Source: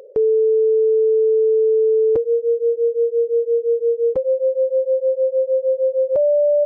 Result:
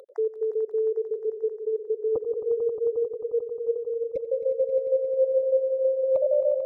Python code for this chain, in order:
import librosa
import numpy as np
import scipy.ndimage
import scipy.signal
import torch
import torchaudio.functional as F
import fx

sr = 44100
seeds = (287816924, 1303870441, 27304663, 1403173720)

y = fx.spec_dropout(x, sr, seeds[0], share_pct=59)
y = fx.tilt_shelf(y, sr, db=-5.5, hz=660.0)
y = fx.echo_swell(y, sr, ms=89, loudest=5, wet_db=-12)
y = y * 10.0 ** (-6.0 / 20.0)